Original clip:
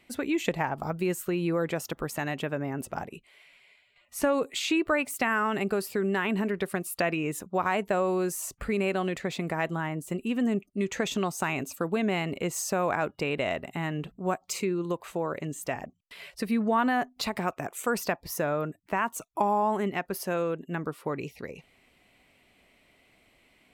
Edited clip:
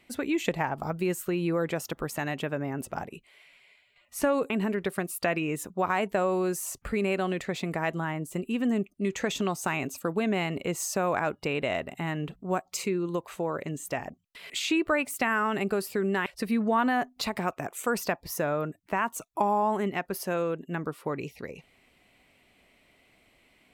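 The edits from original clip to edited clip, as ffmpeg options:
-filter_complex "[0:a]asplit=4[a][b][c][d];[a]atrim=end=4.502[e];[b]atrim=start=6.258:end=16.262[f];[c]atrim=start=4.498:end=6.262[g];[d]atrim=start=16.258[h];[e][f]acrossfade=d=0.004:c1=hsin:c2=hsin[i];[i][g]acrossfade=d=0.004:c1=hsin:c2=hsin[j];[j][h]acrossfade=d=0.004:c1=hsin:c2=hsin"

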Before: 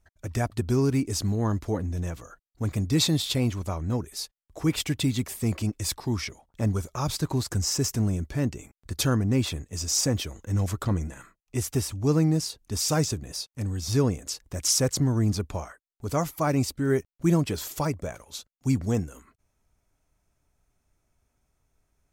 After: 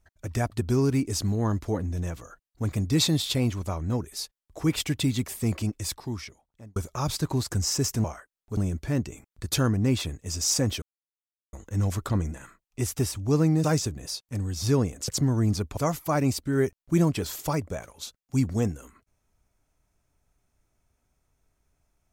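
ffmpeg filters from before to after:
-filter_complex "[0:a]asplit=8[a][b][c][d][e][f][g][h];[a]atrim=end=6.76,asetpts=PTS-STARTPTS,afade=t=out:st=5.58:d=1.18[i];[b]atrim=start=6.76:end=8.042,asetpts=PTS-STARTPTS,afade=t=in:d=0.004:c=hsin[j];[c]atrim=start=15.558:end=16.092[k];[d]atrim=start=8.038:end=10.29,asetpts=PTS-STARTPTS,afade=t=out:st=2.248:d=0.004:c=hsin,apad=pad_dur=0.71[l];[e]atrim=start=10.29:end=12.402,asetpts=PTS-STARTPTS,afade=t=in:d=0.004:c=hsin[m];[f]atrim=start=12.898:end=14.342[n];[g]atrim=start=14.868:end=15.562[o];[h]atrim=start=16.088[p];[i][j]concat=n=2:v=0:a=1[q];[q][k]acrossfade=d=0.004:c1=hsin:c2=hsin[r];[l][m]concat=n=2:v=0:a=1[s];[r][s]acrossfade=d=0.004:c1=hsin:c2=hsin[t];[t][n]acrossfade=d=0.004:c1=hsin:c2=hsin[u];[u][o]acrossfade=d=0.004:c1=hsin:c2=hsin[v];[v][p]acrossfade=d=0.004:c1=hsin:c2=hsin"

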